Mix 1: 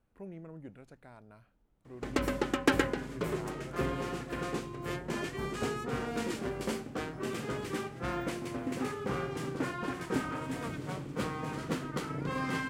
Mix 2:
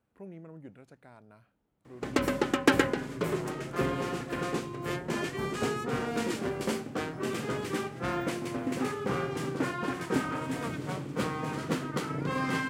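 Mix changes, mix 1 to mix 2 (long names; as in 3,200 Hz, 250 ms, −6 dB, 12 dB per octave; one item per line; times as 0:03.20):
background +3.5 dB
master: add high-pass filter 89 Hz 12 dB per octave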